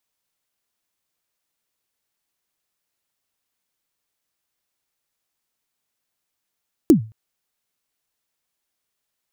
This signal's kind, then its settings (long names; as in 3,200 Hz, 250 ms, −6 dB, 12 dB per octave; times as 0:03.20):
synth kick length 0.22 s, from 360 Hz, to 110 Hz, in 108 ms, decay 0.32 s, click on, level −4 dB